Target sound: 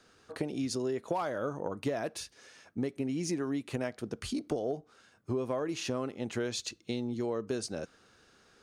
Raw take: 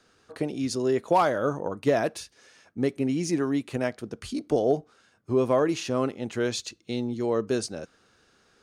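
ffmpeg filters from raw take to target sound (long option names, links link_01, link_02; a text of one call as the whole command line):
ffmpeg -i in.wav -af "acompressor=threshold=-30dB:ratio=6" out.wav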